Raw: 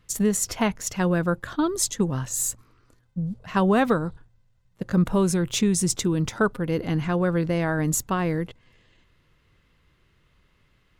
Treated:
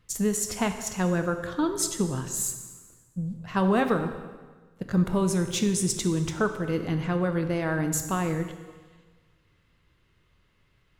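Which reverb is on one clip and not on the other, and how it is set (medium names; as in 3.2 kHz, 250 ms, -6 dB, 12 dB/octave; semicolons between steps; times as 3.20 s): plate-style reverb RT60 1.4 s, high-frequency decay 0.9×, DRR 6.5 dB; trim -3.5 dB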